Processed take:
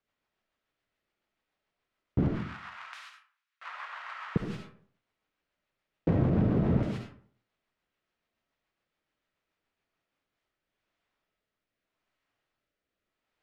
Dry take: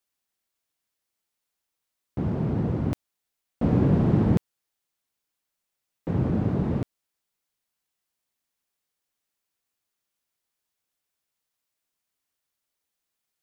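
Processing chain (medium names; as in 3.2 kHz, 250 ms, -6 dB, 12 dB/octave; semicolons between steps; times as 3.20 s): jump at every zero crossing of -32.5 dBFS; low-pass 2.5 kHz 12 dB/octave; gate -41 dBFS, range -40 dB; 2.28–4.36 s: steep high-pass 1.1 kHz 36 dB/octave; compression, threshold -25 dBFS, peak gain reduction 9 dB; rotary cabinet horn 7 Hz, later 0.8 Hz, at 9.82 s; reverberation RT60 0.55 s, pre-delay 25 ms, DRR 2 dB; trim +3.5 dB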